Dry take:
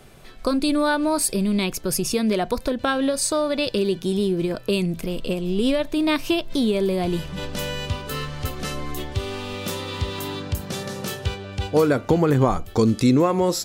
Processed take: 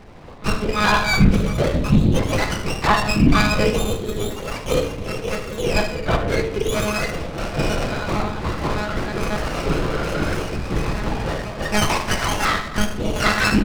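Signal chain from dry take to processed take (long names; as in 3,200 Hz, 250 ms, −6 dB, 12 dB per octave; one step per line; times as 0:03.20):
frequency axis turned over on the octave scale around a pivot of 1,200 Hz
high-pass filter 140 Hz 6 dB per octave
low-shelf EQ 310 Hz −6 dB
mains-hum notches 50/100/150/200 Hz
in parallel at −5 dB: soft clipping −25.5 dBFS, distortion −9 dB
on the sum: ring modulation 33 Hz
one-pitch LPC vocoder at 8 kHz 210 Hz
0:05.80–0:06.28: high-frequency loss of the air 420 metres
on a send: single-tap delay 76 ms −13.5 dB
on the sum: rectangular room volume 260 cubic metres, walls mixed, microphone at 0.73 metres
boost into a limiter +10 dB
windowed peak hold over 9 samples
level −1 dB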